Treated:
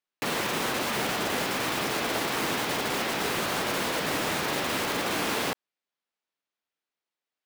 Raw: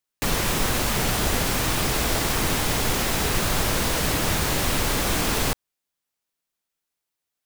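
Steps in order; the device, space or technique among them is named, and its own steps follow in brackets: early digital voice recorder (band-pass 230–3900 Hz; block-companded coder 3-bit); trim -2 dB

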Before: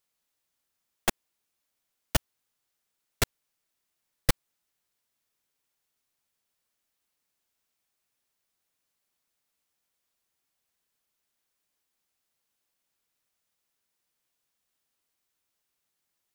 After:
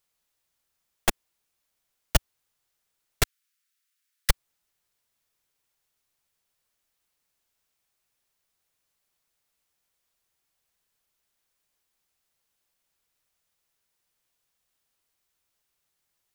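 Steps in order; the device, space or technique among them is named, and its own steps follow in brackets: 3.23–4.30 s: steep high-pass 1.3 kHz; low shelf boost with a cut just above (bass shelf 77 Hz +6 dB; peaking EQ 250 Hz -4 dB 0.71 oct); trim +2.5 dB

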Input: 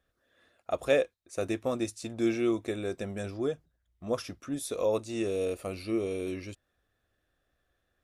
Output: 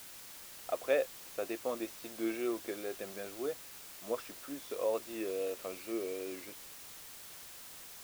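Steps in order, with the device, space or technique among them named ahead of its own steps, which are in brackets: wax cylinder (band-pass 360–2800 Hz; wow and flutter; white noise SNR 11 dB); trim -4 dB

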